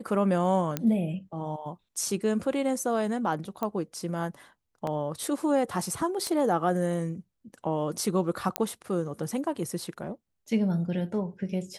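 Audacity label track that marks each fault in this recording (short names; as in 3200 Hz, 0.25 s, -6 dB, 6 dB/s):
0.770000	0.770000	pop -12 dBFS
3.630000	3.630000	pop -17 dBFS
4.870000	4.870000	gap 2.4 ms
6.270000	6.270000	pop -17 dBFS
8.560000	8.560000	pop -8 dBFS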